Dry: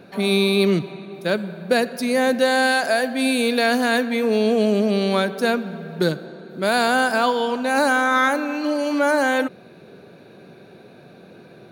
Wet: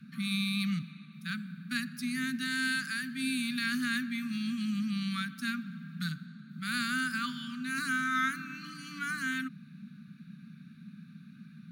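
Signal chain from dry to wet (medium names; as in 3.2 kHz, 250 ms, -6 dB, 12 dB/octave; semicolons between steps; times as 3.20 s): Chebyshev shaper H 3 -25 dB, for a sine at -5 dBFS; Chebyshev band-stop 260–1200 Hz, order 5; band noise 150–230 Hz -40 dBFS; trim -9 dB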